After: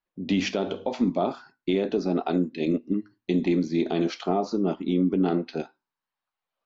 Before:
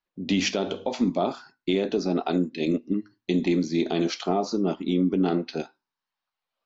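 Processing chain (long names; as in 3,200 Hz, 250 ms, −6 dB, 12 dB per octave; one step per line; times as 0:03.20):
high-shelf EQ 4,600 Hz −11.5 dB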